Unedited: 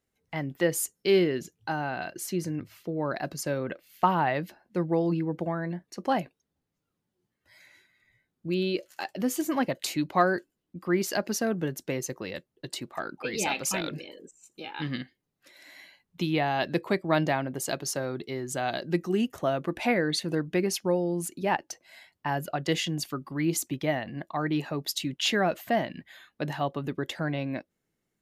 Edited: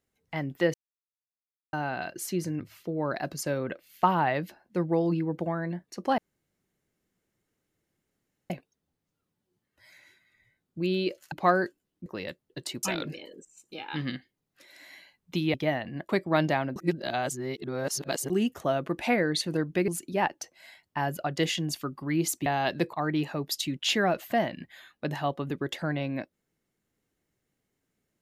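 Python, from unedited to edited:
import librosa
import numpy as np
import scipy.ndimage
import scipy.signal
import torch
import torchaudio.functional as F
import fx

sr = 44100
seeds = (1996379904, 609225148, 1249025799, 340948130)

y = fx.edit(x, sr, fx.silence(start_s=0.74, length_s=0.99),
    fx.insert_room_tone(at_s=6.18, length_s=2.32),
    fx.cut(start_s=9.0, length_s=1.04),
    fx.cut(start_s=10.78, length_s=1.35),
    fx.cut(start_s=12.9, length_s=0.79),
    fx.swap(start_s=16.4, length_s=0.47, other_s=23.75, other_length_s=0.55),
    fx.reverse_span(start_s=17.54, length_s=1.54),
    fx.cut(start_s=20.66, length_s=0.51), tone=tone)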